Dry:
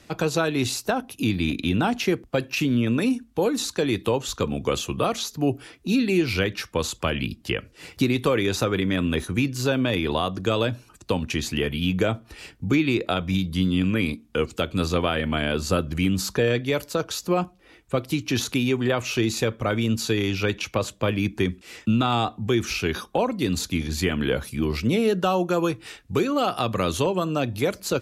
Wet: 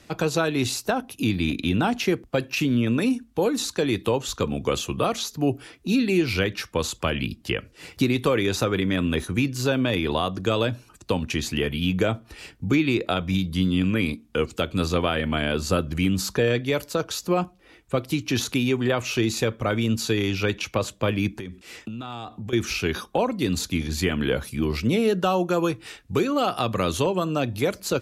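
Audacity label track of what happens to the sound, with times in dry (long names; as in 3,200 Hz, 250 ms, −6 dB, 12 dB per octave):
21.320000	22.530000	downward compressor 12 to 1, threshold −30 dBFS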